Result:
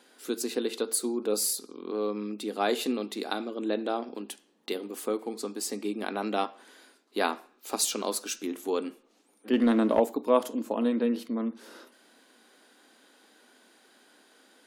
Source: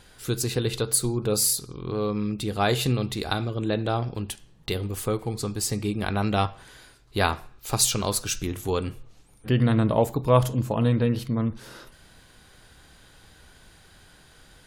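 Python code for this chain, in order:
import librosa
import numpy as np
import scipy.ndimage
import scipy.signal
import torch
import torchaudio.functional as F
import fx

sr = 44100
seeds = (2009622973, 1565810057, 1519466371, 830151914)

y = scipy.signal.sosfilt(scipy.signal.ellip(4, 1.0, 50, 240.0, 'highpass', fs=sr, output='sos'), x)
y = fx.low_shelf(y, sr, hz=420.0, db=7.0)
y = fx.leveller(y, sr, passes=1, at=(9.53, 10.0))
y = y * librosa.db_to_amplitude(-5.0)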